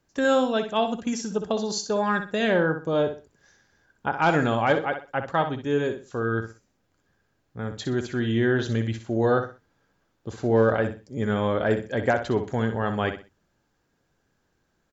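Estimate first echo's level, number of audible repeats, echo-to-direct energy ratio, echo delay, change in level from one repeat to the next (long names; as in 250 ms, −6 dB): −9.0 dB, 3, −8.5 dB, 62 ms, −11.5 dB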